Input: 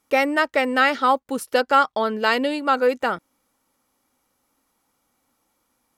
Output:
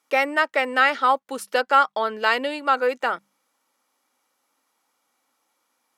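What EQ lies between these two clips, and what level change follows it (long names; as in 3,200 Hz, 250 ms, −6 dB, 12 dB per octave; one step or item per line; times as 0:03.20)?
meter weighting curve A
dynamic equaliser 4,900 Hz, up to −4 dB, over −36 dBFS, Q 0.96
mains-hum notches 50/100/150/200 Hz
0.0 dB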